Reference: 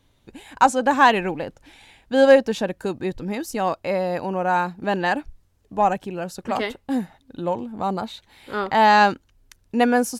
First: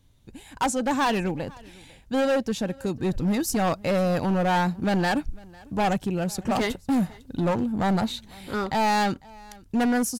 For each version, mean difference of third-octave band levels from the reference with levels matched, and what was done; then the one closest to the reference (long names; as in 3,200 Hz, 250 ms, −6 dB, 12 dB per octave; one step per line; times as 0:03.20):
6.0 dB: bass and treble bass +10 dB, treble +7 dB
automatic gain control gain up to 11 dB
hard clipping −13 dBFS, distortion −9 dB
single-tap delay 500 ms −24 dB
level −6.5 dB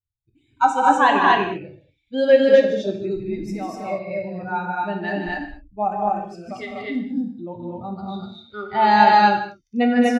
9.5 dB: spectral dynamics exaggerated over time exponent 2
low-pass filter 5,400 Hz 12 dB per octave
loudspeakers that aren't time-aligned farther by 52 metres −7 dB, 72 metres −6 dB, 84 metres 0 dB
reverb whose tail is shaped and stops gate 250 ms falling, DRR 3 dB
level −1 dB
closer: first